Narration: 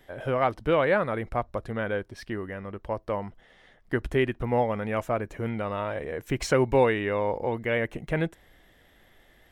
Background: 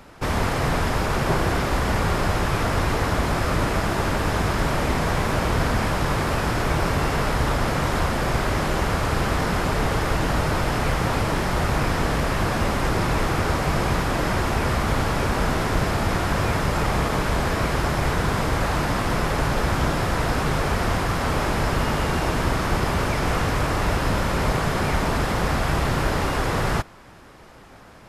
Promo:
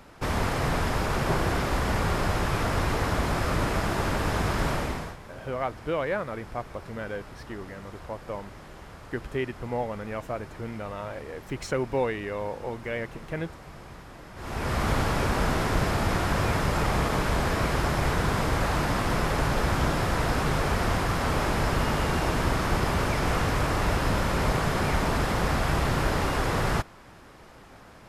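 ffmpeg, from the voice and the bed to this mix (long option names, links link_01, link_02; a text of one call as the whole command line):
ffmpeg -i stem1.wav -i stem2.wav -filter_complex "[0:a]adelay=5200,volume=-5.5dB[link_01];[1:a]volume=15.5dB,afade=type=out:start_time=4.69:duration=0.48:silence=0.11885,afade=type=in:start_time=14.35:duration=0.5:silence=0.105925[link_02];[link_01][link_02]amix=inputs=2:normalize=0" out.wav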